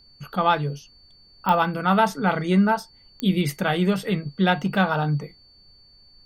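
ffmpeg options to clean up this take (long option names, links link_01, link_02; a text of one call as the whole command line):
ffmpeg -i in.wav -af "adeclick=threshold=4,bandreject=frequency=4500:width=30,agate=range=-21dB:threshold=-46dB" out.wav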